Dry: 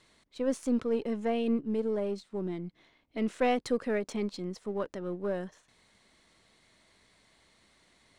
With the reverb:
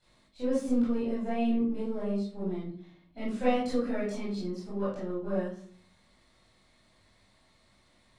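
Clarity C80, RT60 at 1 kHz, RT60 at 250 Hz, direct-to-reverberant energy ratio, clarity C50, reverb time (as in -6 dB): 8.0 dB, 0.40 s, 0.70 s, -11.0 dB, 1.0 dB, 0.50 s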